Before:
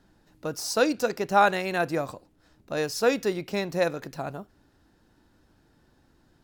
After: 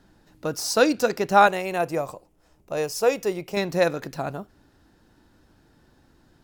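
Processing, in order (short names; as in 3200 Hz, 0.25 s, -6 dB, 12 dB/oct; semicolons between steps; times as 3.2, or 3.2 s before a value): 1.47–3.57 fifteen-band EQ 100 Hz -9 dB, 250 Hz -10 dB, 1600 Hz -8 dB, 4000 Hz -9 dB; gain +4 dB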